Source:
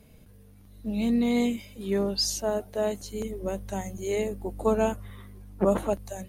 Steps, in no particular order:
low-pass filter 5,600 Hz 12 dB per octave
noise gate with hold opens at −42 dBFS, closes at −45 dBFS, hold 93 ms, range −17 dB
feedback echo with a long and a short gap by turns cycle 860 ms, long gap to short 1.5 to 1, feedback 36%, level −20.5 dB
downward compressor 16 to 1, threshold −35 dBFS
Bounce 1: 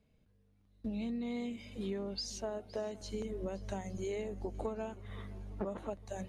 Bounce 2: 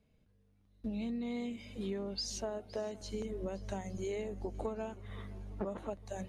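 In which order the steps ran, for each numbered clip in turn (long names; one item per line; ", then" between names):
downward compressor, then low-pass filter, then noise gate with hold, then feedback echo with a long and a short gap by turns
noise gate with hold, then low-pass filter, then downward compressor, then feedback echo with a long and a short gap by turns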